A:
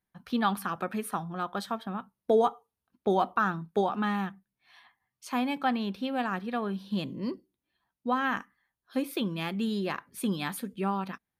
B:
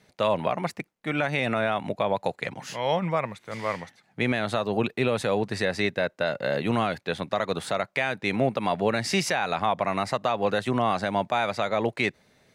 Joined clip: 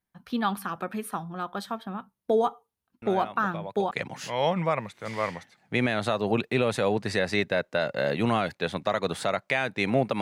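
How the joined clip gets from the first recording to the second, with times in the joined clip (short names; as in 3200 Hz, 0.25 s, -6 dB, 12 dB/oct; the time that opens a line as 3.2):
A
3.02 add B from 1.48 s 0.89 s -12.5 dB
3.91 switch to B from 2.37 s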